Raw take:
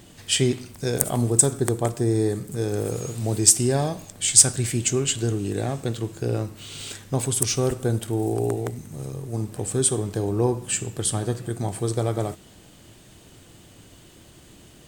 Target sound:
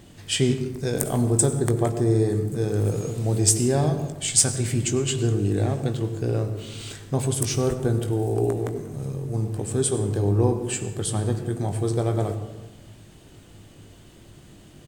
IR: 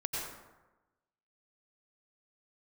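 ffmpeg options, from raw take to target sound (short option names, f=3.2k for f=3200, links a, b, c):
-filter_complex "[0:a]highshelf=f=4.7k:g=-4.5,asplit=2[a][b];[b]adelay=20,volume=-11dB[c];[a][c]amix=inputs=2:normalize=0,asplit=2[d][e];[1:a]atrim=start_sample=2205,lowshelf=f=480:g=10.5[f];[e][f]afir=irnorm=-1:irlink=0,volume=-13dB[g];[d][g]amix=inputs=2:normalize=0,volume=-3dB"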